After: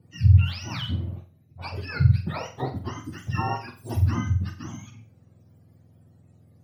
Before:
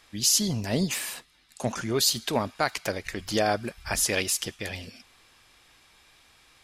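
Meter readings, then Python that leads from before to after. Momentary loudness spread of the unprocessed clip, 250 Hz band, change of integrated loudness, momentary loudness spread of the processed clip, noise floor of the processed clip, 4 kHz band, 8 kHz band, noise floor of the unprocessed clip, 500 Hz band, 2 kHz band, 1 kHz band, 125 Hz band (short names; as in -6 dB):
13 LU, -2.5 dB, +1.0 dB, 19 LU, -58 dBFS, -10.5 dB, under -20 dB, -60 dBFS, -10.0 dB, -5.5 dB, -2.0 dB, +14.0 dB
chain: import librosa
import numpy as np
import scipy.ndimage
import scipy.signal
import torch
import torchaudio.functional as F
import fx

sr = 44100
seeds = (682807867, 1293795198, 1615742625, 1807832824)

y = fx.octave_mirror(x, sr, pivot_hz=760.0)
y = fx.room_flutter(y, sr, wall_m=7.7, rt60_s=0.36)
y = F.gain(torch.from_numpy(y), -3.5).numpy()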